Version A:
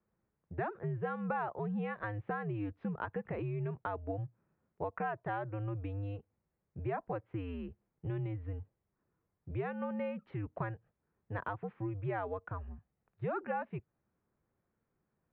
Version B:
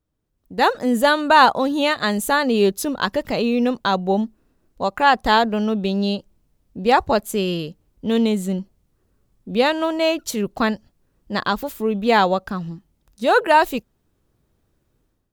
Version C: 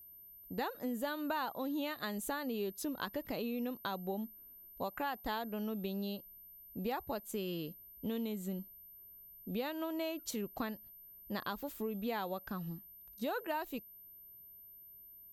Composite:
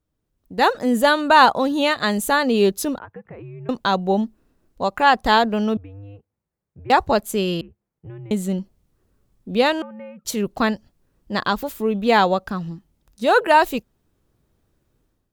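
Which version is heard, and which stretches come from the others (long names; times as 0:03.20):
B
0:02.99–0:03.69: punch in from A
0:05.77–0:06.90: punch in from A
0:07.61–0:08.31: punch in from A
0:09.82–0:10.25: punch in from A
not used: C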